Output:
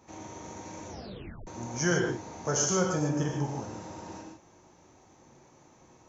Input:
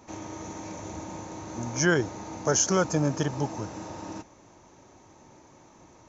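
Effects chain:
0:03.02–0:03.47: parametric band 4,100 Hz −9 dB 0.44 octaves
reverb whose tail is shaped and stops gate 180 ms flat, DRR 0 dB
0:00.89: tape stop 0.58 s
level −6.5 dB

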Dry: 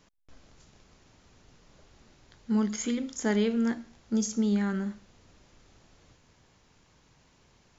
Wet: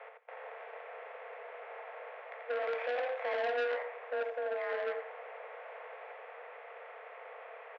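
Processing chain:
compressor on every frequency bin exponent 0.6
0:04.28–0:04.85: output level in coarse steps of 15 dB
brickwall limiter −21.5 dBFS, peak gain reduction 9 dB
0:02.53–0:03.42: log-companded quantiser 4 bits
single-tap delay 86 ms −5 dB
single-sideband voice off tune +250 Hz 230–2,300 Hz
far-end echo of a speakerphone 110 ms, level −22 dB
saturating transformer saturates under 1,500 Hz

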